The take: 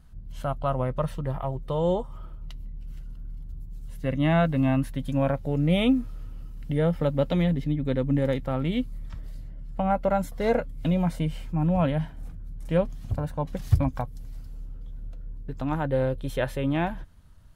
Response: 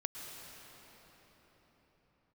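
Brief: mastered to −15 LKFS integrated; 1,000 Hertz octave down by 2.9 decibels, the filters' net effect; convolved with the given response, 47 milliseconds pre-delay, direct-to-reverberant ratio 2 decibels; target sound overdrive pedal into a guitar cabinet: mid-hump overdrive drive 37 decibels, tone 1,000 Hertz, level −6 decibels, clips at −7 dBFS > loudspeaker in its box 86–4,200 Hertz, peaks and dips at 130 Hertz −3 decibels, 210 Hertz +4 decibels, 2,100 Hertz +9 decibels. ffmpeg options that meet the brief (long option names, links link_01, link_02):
-filter_complex "[0:a]equalizer=frequency=1000:width_type=o:gain=-4.5,asplit=2[link_01][link_02];[1:a]atrim=start_sample=2205,adelay=47[link_03];[link_02][link_03]afir=irnorm=-1:irlink=0,volume=-2.5dB[link_04];[link_01][link_04]amix=inputs=2:normalize=0,asplit=2[link_05][link_06];[link_06]highpass=frequency=720:poles=1,volume=37dB,asoftclip=type=tanh:threshold=-7dB[link_07];[link_05][link_07]amix=inputs=2:normalize=0,lowpass=frequency=1000:poles=1,volume=-6dB,highpass=86,equalizer=frequency=130:width_type=q:width=4:gain=-3,equalizer=frequency=210:width_type=q:width=4:gain=4,equalizer=frequency=2100:width_type=q:width=4:gain=9,lowpass=frequency=4200:width=0.5412,lowpass=frequency=4200:width=1.3066,volume=1dB"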